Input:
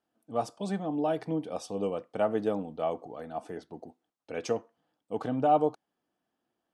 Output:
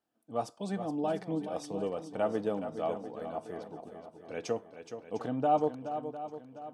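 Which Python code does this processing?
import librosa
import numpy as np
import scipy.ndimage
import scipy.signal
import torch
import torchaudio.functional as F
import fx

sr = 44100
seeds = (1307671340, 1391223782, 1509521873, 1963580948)

y = fx.echo_swing(x, sr, ms=703, ratio=1.5, feedback_pct=38, wet_db=-10)
y = y * librosa.db_to_amplitude(-3.0)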